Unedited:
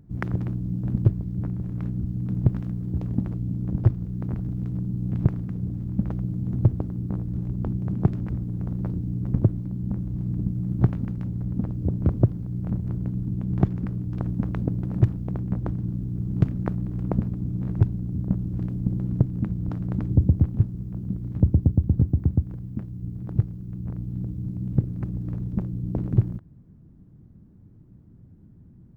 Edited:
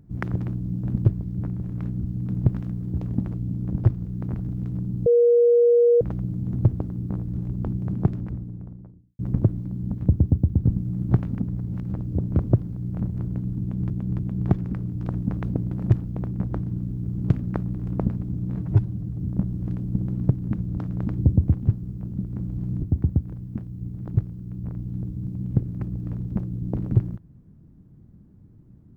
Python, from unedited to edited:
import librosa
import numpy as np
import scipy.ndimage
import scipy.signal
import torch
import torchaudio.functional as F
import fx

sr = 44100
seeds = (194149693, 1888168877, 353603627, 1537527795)

y = fx.studio_fade_out(x, sr, start_s=7.87, length_s=1.32)
y = fx.edit(y, sr, fx.bleep(start_s=5.06, length_s=0.95, hz=476.0, db=-13.0),
    fx.swap(start_s=9.94, length_s=0.46, other_s=21.28, other_length_s=0.76),
    fx.reverse_span(start_s=11.09, length_s=0.53),
    fx.repeat(start_s=13.31, length_s=0.29, count=3),
    fx.stretch_span(start_s=17.69, length_s=0.41, factor=1.5), tone=tone)